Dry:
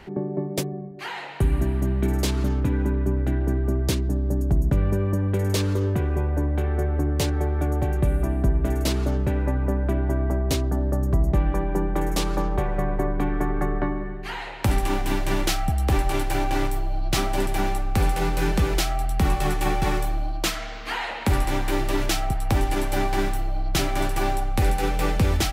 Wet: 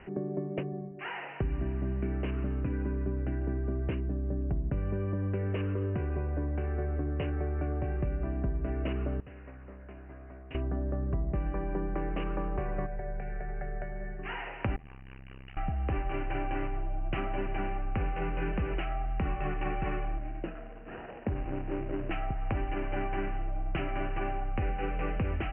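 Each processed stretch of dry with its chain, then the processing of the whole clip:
0:09.20–0:10.55: first-order pre-emphasis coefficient 0.9 + highs frequency-modulated by the lows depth 0.41 ms
0:12.86–0:14.19: downward compressor, threshold −24 dBFS + phaser with its sweep stopped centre 1,100 Hz, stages 6
0:14.76–0:15.57: guitar amp tone stack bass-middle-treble 5-5-5 + saturating transformer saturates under 460 Hz
0:20.18–0:22.11: running median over 41 samples + high-pass filter 57 Hz 6 dB per octave
whole clip: Chebyshev low-pass filter 2,900 Hz, order 8; notch filter 870 Hz, Q 12; downward compressor 2.5 to 1, threshold −26 dBFS; level −4 dB

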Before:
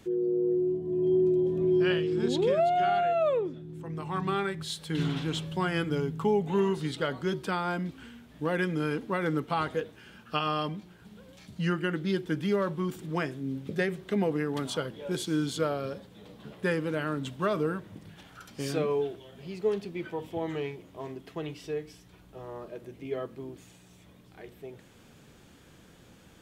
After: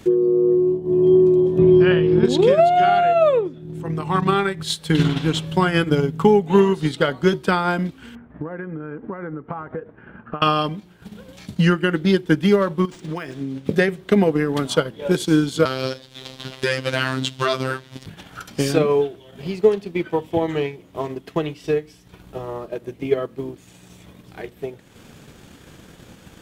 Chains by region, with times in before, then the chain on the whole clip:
0:01.58–0:02.25: low-pass filter 2,700 Hz + parametric band 84 Hz +6.5 dB 2 octaves + multiband upward and downward compressor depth 40%
0:08.15–0:10.42: low-pass filter 1,700 Hz 24 dB per octave + downward compressor 5 to 1, threshold −39 dBFS
0:12.85–0:13.67: spectral tilt +1.5 dB per octave + downward compressor 8 to 1, threshold −34 dBFS + linearly interpolated sample-rate reduction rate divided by 3×
0:15.65–0:18.06: parametric band 4,500 Hz +15 dB 2.2 octaves + phases set to zero 131 Hz
whole clip: transient designer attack +6 dB, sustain −7 dB; boost into a limiter +13.5 dB; level −3.5 dB

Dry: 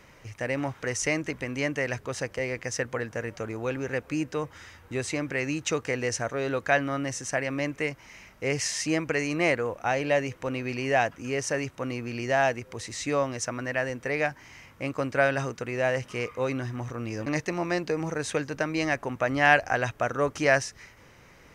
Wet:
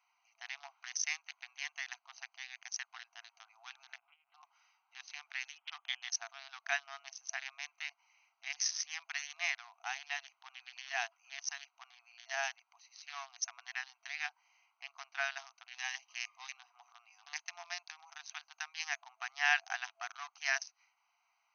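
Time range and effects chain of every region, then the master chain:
0:03.94–0:04.43: downward compressor 10 to 1, threshold −29 dBFS + linear-prediction vocoder at 8 kHz pitch kept + highs frequency-modulated by the lows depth 0.2 ms
0:05.56–0:06.11: bad sample-rate conversion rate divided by 8×, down filtered, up zero stuff + linear-phase brick-wall low-pass 3,500 Hz
0:15.71–0:16.57: high-pass filter 280 Hz + high-shelf EQ 3,900 Hz +9.5 dB + notch filter 1,400 Hz, Q 5.5
whole clip: adaptive Wiener filter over 25 samples; brick-wall band-pass 670–6,400 Hz; first difference; level +4 dB

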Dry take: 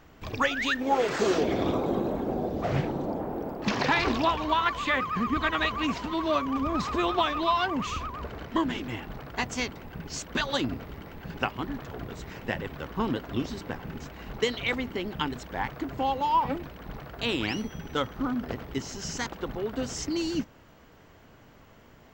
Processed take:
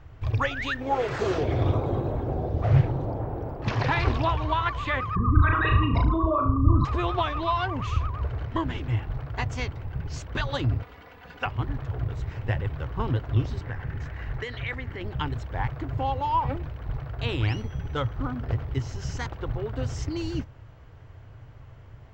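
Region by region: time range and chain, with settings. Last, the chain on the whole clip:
0:05.15–0:06.85: spectral envelope exaggerated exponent 3 + flutter between parallel walls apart 6.3 metres, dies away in 0.39 s + envelope flattener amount 70%
0:10.82–0:11.46: high-pass filter 690 Hz 6 dB per octave + comb filter 4.1 ms, depth 83%
0:13.63–0:15.01: downward compressor 2 to 1, threshold −36 dBFS + parametric band 1,800 Hz +10.5 dB 0.55 octaves + one half of a high-frequency compander decoder only
whole clip: low-pass filter 2,500 Hz 6 dB per octave; low shelf with overshoot 150 Hz +9.5 dB, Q 3

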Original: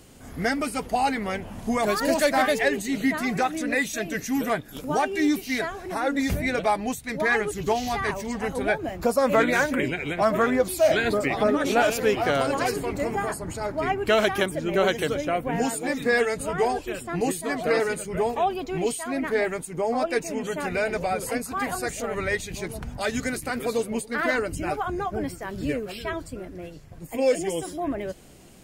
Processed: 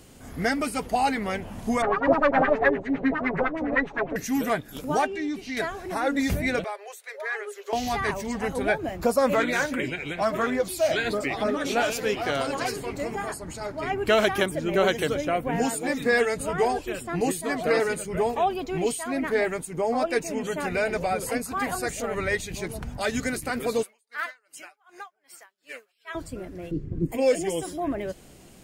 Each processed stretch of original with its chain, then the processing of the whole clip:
0:01.82–0:04.16: lower of the sound and its delayed copy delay 7.2 ms + auto-filter low-pass sine 9.8 Hz 540–1,900 Hz
0:05.06–0:05.57: high-frequency loss of the air 82 metres + downward compressor 2 to 1, threshold −32 dBFS
0:06.64–0:07.73: downward compressor 1.5 to 1, threshold −36 dBFS + Chebyshev high-pass with heavy ripple 390 Hz, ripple 6 dB
0:09.34–0:13.93: parametric band 4,600 Hz +4.5 dB 2.1 octaves + flanger 1 Hz, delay 2.1 ms, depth 7.2 ms, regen −64%
0:23.83–0:26.15: high-pass filter 1,100 Hz + tremolo with a sine in dB 2.6 Hz, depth 36 dB
0:26.71–0:27.12: low-pass filter 1,300 Hz 6 dB per octave + low shelf with overshoot 490 Hz +12 dB, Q 3
whole clip: no processing

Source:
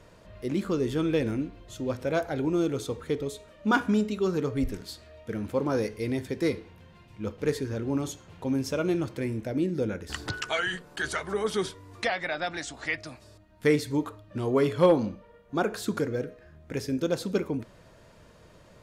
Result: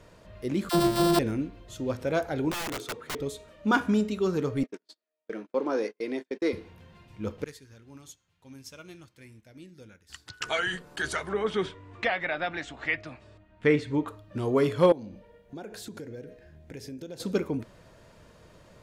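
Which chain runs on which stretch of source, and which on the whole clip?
0:00.69–0:01.19: samples sorted by size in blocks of 128 samples + comb filter 5.6 ms, depth 82% + all-pass dispersion lows, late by 46 ms, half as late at 680 Hz
0:02.51–0:03.19: high-pass filter 130 Hz + bass and treble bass −6 dB, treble −7 dB + wrap-around overflow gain 28 dB
0:04.63–0:06.53: high-pass filter 270 Hz 24 dB per octave + noise gate −39 dBFS, range −37 dB + high-frequency loss of the air 70 metres
0:07.44–0:10.41: guitar amp tone stack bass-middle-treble 5-5-5 + expander for the loud parts, over −60 dBFS
0:11.29–0:14.08: low-pass filter 8,200 Hz 24 dB per octave + high shelf with overshoot 3,800 Hz −9 dB, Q 1.5
0:14.92–0:17.20: parametric band 1,200 Hz −13 dB 0.37 octaves + downward compressor 4 to 1, threshold −39 dBFS
whole clip: no processing

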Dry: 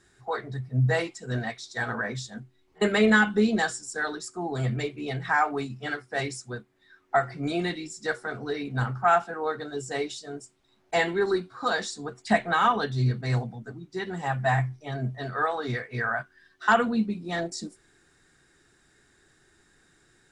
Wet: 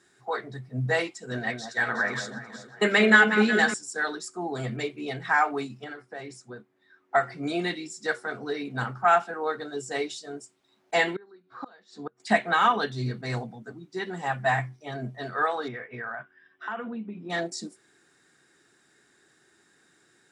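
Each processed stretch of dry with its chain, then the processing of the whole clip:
0:01.21–0:03.74: delay that swaps between a low-pass and a high-pass 183 ms, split 1,400 Hz, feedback 63%, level −6 dB + dynamic equaliser 1,900 Hz, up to +4 dB, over −38 dBFS, Q 1.4
0:05.84–0:07.15: downward compressor 3 to 1, threshold −35 dBFS + high-shelf EQ 2,600 Hz −9.5 dB
0:11.16–0:12.20: low-pass filter 3,500 Hz + gate with flip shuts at −23 dBFS, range −27 dB
0:15.68–0:17.30: Savitzky-Golay smoothing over 25 samples + downward compressor 4 to 1, threshold −32 dBFS
whole clip: dynamic equaliser 2,500 Hz, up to +3 dB, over −35 dBFS, Q 0.95; high-pass filter 180 Hz 12 dB per octave

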